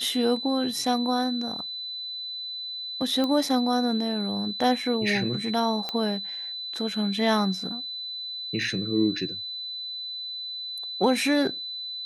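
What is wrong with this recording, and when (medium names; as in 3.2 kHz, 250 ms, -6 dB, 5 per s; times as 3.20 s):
whine 4 kHz -32 dBFS
3.24 s: pop -15 dBFS
5.89 s: pop -15 dBFS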